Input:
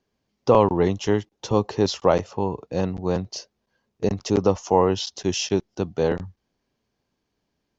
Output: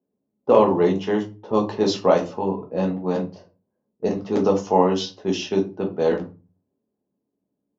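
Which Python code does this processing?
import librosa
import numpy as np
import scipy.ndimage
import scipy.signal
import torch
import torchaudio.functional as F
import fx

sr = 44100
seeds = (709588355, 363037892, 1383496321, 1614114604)

y = scipy.signal.sosfilt(scipy.signal.butter(2, 190.0, 'highpass', fs=sr, output='sos'), x)
y = fx.env_lowpass(y, sr, base_hz=490.0, full_db=-17.0)
y = fx.room_shoebox(y, sr, seeds[0], volume_m3=120.0, walls='furnished', distance_m=1.4)
y = F.gain(torch.from_numpy(y), -2.0).numpy()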